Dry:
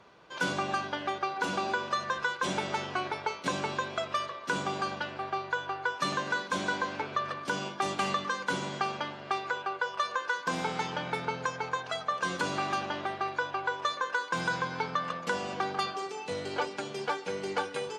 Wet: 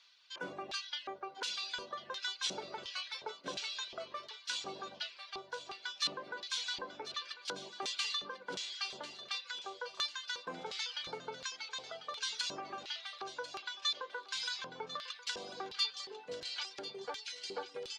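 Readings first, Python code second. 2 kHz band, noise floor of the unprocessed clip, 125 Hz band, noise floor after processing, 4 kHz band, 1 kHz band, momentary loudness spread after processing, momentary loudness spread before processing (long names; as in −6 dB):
−11.5 dB, −44 dBFS, −20.5 dB, −57 dBFS, +1.5 dB, −14.5 dB, 8 LU, 4 LU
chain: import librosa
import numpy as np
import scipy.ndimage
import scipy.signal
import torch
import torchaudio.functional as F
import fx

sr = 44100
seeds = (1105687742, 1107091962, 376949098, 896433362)

y = fx.filter_lfo_bandpass(x, sr, shape='square', hz=1.4, low_hz=450.0, high_hz=4200.0, q=2.0)
y = fx.tone_stack(y, sr, knobs='5-5-5')
y = fx.dereverb_blind(y, sr, rt60_s=0.69)
y = fx.echo_thinned(y, sr, ms=1045, feedback_pct=49, hz=790.0, wet_db=-13.0)
y = y * librosa.db_to_amplitude(14.0)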